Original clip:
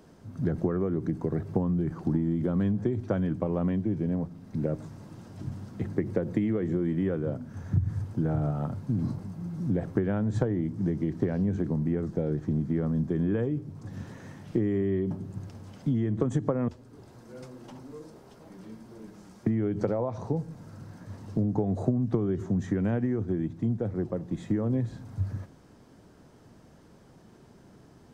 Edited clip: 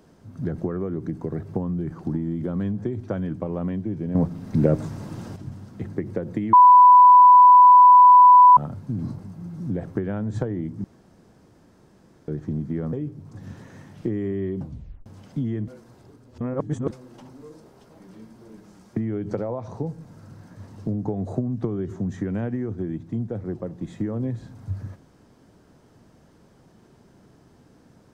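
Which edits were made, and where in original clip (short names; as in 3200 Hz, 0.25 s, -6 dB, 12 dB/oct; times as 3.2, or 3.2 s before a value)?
4.15–5.36 gain +10.5 dB
6.53–8.57 bleep 993 Hz -7 dBFS
10.84–12.28 room tone
12.93–13.43 cut
15.09 tape stop 0.47 s
16.18–17.41 reverse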